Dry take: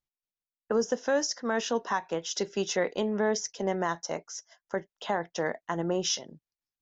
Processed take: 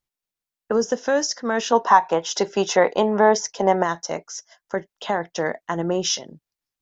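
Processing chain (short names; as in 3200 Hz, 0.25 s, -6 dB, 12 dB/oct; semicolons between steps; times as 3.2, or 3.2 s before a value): 1.72–3.83 bell 880 Hz +11.5 dB 1.3 oct; gain +6 dB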